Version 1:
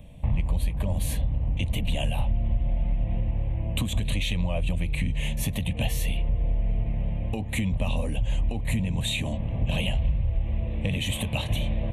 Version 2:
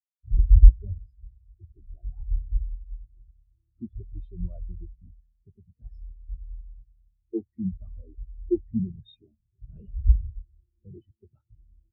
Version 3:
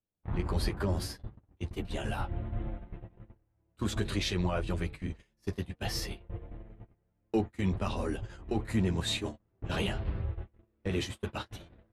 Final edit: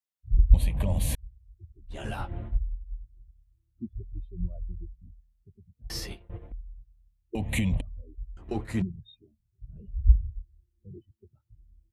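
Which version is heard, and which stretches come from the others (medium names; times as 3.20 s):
2
0.54–1.15 s: from 1
1.96–2.51 s: from 3, crossfade 0.16 s
5.90–6.52 s: from 3
7.35–7.81 s: from 1
8.37–8.82 s: from 3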